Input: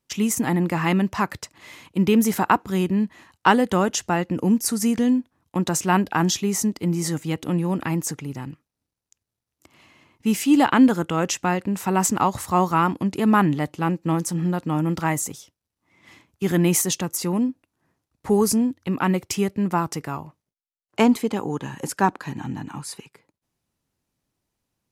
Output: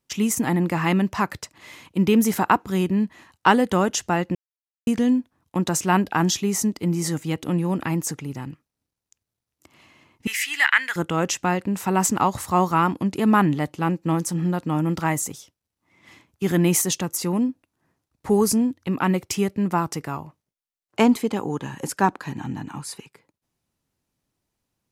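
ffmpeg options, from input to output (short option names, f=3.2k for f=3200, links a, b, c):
-filter_complex "[0:a]asettb=1/sr,asplit=3[a][b][c];[a]atrim=end=10.274[d];[b]atrim=start=10.27:end=10.96,asetpts=PTS-STARTPTS,afade=t=in:d=0.004:c=qsin,afade=t=out:st=0.686:d=0.004:c=qsin,highpass=f=1.9k:t=q:w=6.5[e];[c]atrim=start=10.956[f];[d][e]acrossfade=d=0.004:c1=hsin:c2=qsin[g];[g][f]acrossfade=d=0.004:c1=qsin:c2=hsin,asplit=3[h][i][j];[h]atrim=end=4.35,asetpts=PTS-STARTPTS,afade=t=out:st=4.346:d=0.004:c=hsin[k];[i]atrim=start=4.35:end=4.87,asetpts=PTS-STARTPTS,volume=0[l];[j]atrim=start=4.87,asetpts=PTS-STARTPTS,afade=t=in:d=0.004:c=hsin[m];[k][l][m]concat=n=3:v=0:a=1"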